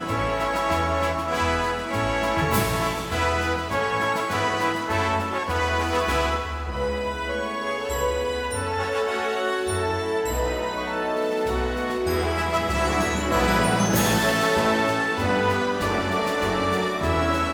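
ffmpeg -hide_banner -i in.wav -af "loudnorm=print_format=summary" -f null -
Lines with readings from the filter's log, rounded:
Input Integrated:    -23.5 LUFS
Input True Peak:      -8.9 dBTP
Input LRA:             3.9 LU
Input Threshold:     -33.5 LUFS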